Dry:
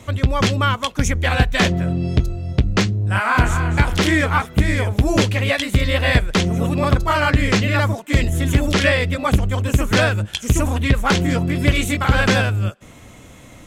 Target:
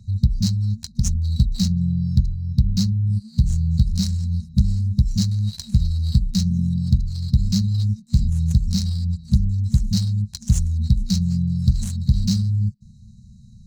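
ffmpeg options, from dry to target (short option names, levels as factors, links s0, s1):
-filter_complex "[0:a]asettb=1/sr,asplit=3[s0][s1][s2];[s0]atrim=end=5.224[s3];[s1]atrim=start=5.22:end=6.11,asetpts=PTS-STARTPTS,afade=t=in:d=0.004:c=qsin,afade=t=out:st=0.886:d=0.004:c=qsin,acrusher=bits=7:dc=4:mix=0:aa=0.000001[s4];[s2]atrim=start=6.106[s5];[s3][s4]acrossfade=d=0.004:c1=hsin:c2=qsin[s6];[s6][s5]acrossfade=d=0.004:c1=qsin:c2=hsin,afftfilt=real='re*(1-between(b*sr/4096,230,3800))':imag='im*(1-between(b*sr/4096,230,3800))':win_size=4096:overlap=0.75,adynamicsmooth=sensitivity=4.5:basefreq=2900"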